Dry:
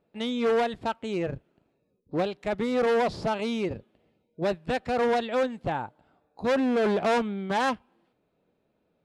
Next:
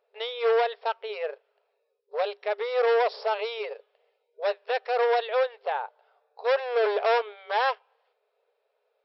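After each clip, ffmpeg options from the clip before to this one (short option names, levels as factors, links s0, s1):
-af "afftfilt=real='re*between(b*sr/4096,400,5600)':imag='im*between(b*sr/4096,400,5600)':win_size=4096:overlap=0.75,volume=1.19"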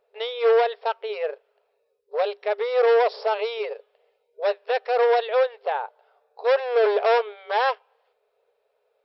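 -af "lowshelf=f=310:g=10.5,volume=1.19"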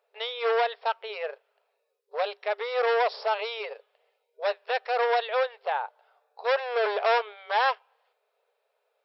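-af "highpass=700"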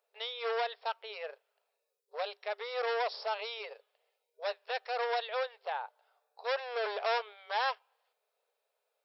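-af "bass=f=250:g=-12,treble=f=4000:g=9,volume=0.398"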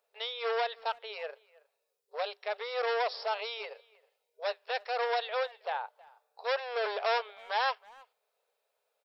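-filter_complex "[0:a]asplit=2[s0][s1];[s1]adelay=320,highpass=300,lowpass=3400,asoftclip=type=hard:threshold=0.0376,volume=0.0708[s2];[s0][s2]amix=inputs=2:normalize=0,volume=1.26"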